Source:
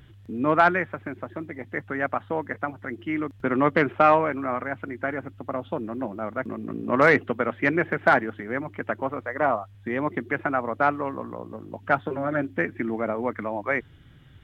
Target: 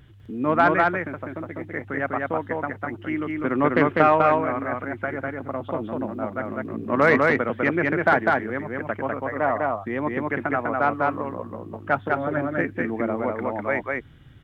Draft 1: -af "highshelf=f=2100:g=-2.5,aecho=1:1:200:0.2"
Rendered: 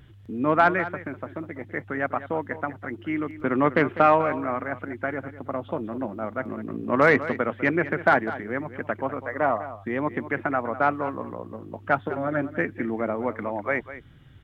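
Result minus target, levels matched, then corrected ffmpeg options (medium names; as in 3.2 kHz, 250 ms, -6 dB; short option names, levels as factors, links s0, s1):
echo-to-direct -12 dB
-af "highshelf=f=2100:g=-2.5,aecho=1:1:200:0.794"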